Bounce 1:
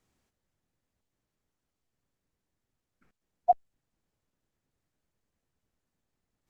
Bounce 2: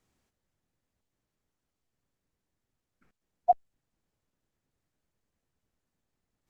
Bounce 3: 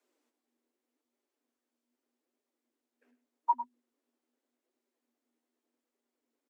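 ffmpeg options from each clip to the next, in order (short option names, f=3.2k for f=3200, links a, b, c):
-af anull
-af "afreqshift=240,flanger=delay=4.9:depth=7.8:regen=42:speed=0.83:shape=sinusoidal,aecho=1:1:102:0.266"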